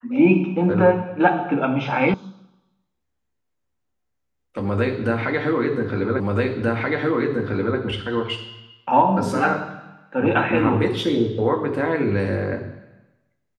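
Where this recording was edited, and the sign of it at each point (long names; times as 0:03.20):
0:02.14: cut off before it has died away
0:06.20: the same again, the last 1.58 s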